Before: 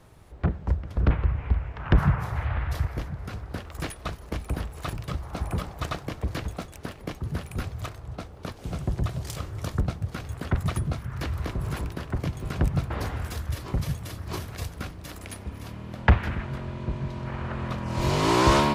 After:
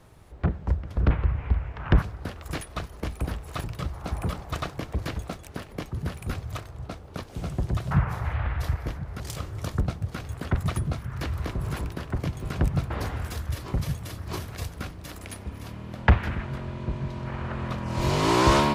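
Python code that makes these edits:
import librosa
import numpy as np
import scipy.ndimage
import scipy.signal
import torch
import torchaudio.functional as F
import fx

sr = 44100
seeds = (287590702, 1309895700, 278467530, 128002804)

y = fx.edit(x, sr, fx.move(start_s=2.02, length_s=1.29, to_s=9.2), tone=tone)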